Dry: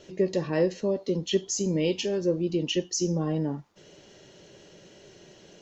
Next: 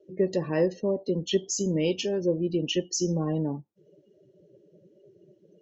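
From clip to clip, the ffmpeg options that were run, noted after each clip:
-af "afftdn=nr=30:nf=-43"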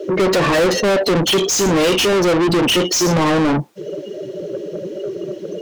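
-filter_complex "[0:a]asplit=2[s0][s1];[s1]highpass=f=720:p=1,volume=100,asoftclip=type=tanh:threshold=0.237[s2];[s0][s2]amix=inputs=2:normalize=0,lowpass=f=5700:p=1,volume=0.501,volume=1.58"

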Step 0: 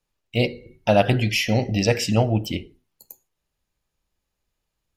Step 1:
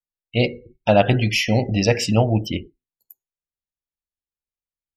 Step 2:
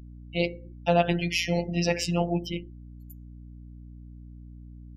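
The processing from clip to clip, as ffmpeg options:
-af "afftdn=nr=25:nf=-37,volume=1.26"
-af "afftfilt=real='hypot(re,im)*cos(PI*b)':imag='0':win_size=1024:overlap=0.75,aeval=exprs='val(0)+0.01*(sin(2*PI*60*n/s)+sin(2*PI*2*60*n/s)/2+sin(2*PI*3*60*n/s)/3+sin(2*PI*4*60*n/s)/4+sin(2*PI*5*60*n/s)/5)':c=same,volume=0.708"

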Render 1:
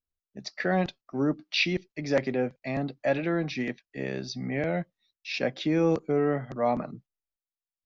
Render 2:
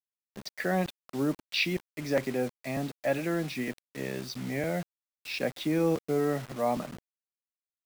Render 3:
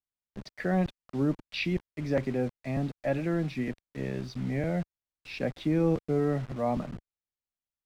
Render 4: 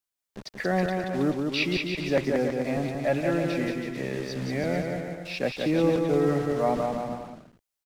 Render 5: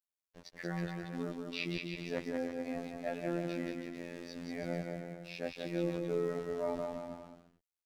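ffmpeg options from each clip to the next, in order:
-af "acrusher=bits=6:mix=0:aa=0.000001,volume=0.75"
-af "aemphasis=mode=reproduction:type=bsi,volume=0.75"
-af "bass=f=250:g=-8,treble=f=4000:g=4,aecho=1:1:180|324|439.2|531.4|605.1:0.631|0.398|0.251|0.158|0.1,volume=1.68"
-af "afftfilt=real='hypot(re,im)*cos(PI*b)':imag='0':win_size=2048:overlap=0.75,volume=0.376"

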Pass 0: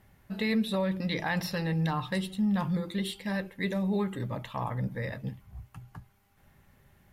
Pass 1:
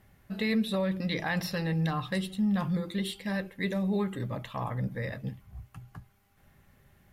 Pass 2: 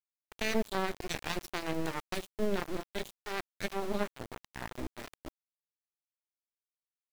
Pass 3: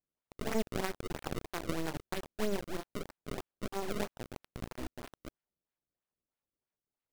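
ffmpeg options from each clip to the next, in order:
-af "bandreject=f=910:w=10"
-af "aeval=exprs='0.126*(cos(1*acos(clip(val(0)/0.126,-1,1)))-cos(1*PI/2))+0.0562*(cos(2*acos(clip(val(0)/0.126,-1,1)))-cos(2*PI/2))+0.0501*(cos(3*acos(clip(val(0)/0.126,-1,1)))-cos(3*PI/2))+0.00316*(cos(6*acos(clip(val(0)/0.126,-1,1)))-cos(6*PI/2))':c=same,aeval=exprs='val(0)*gte(abs(val(0)),0.015)':c=same"
-af "acrusher=samples=30:mix=1:aa=0.000001:lfo=1:lforange=48:lforate=3.1,volume=0.794"

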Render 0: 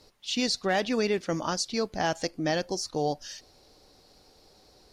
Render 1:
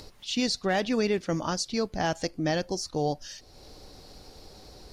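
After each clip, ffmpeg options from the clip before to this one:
-af "acompressor=mode=upward:threshold=0.01:ratio=2.5,lowshelf=f=170:g=8,volume=0.891"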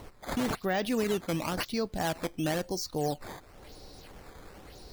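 -filter_complex "[0:a]asplit=2[s0][s1];[s1]alimiter=level_in=1.06:limit=0.0631:level=0:latency=1:release=34,volume=0.944,volume=0.794[s2];[s0][s2]amix=inputs=2:normalize=0,acrusher=samples=9:mix=1:aa=0.000001:lfo=1:lforange=14.4:lforate=0.97,volume=0.531"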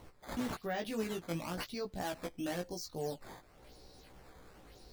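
-af "flanger=delay=15.5:depth=2.7:speed=0.48,volume=0.562"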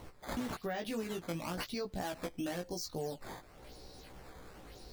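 -af "acompressor=threshold=0.0112:ratio=6,volume=1.68"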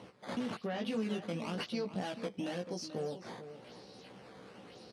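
-filter_complex "[0:a]aeval=exprs='(tanh(39.8*val(0)+0.3)-tanh(0.3))/39.8':c=same,highpass=f=110:w=0.5412,highpass=f=110:w=1.3066,equalizer=f=210:t=q:w=4:g=8,equalizer=f=490:t=q:w=4:g=5,equalizer=f=2900:t=q:w=4:g=6,equalizer=f=7300:t=q:w=4:g=-9,lowpass=f=9000:w=0.5412,lowpass=f=9000:w=1.3066,asplit=2[s0][s1];[s1]adelay=437.3,volume=0.282,highshelf=f=4000:g=-9.84[s2];[s0][s2]amix=inputs=2:normalize=0"

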